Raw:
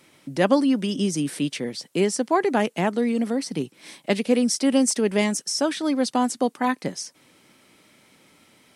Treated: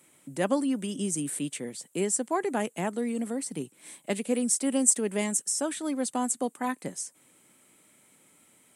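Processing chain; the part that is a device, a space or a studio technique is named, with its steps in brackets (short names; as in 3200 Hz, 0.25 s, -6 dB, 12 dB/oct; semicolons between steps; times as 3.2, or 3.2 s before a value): budget condenser microphone (HPF 81 Hz; resonant high shelf 6400 Hz +7 dB, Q 3); gain -7.5 dB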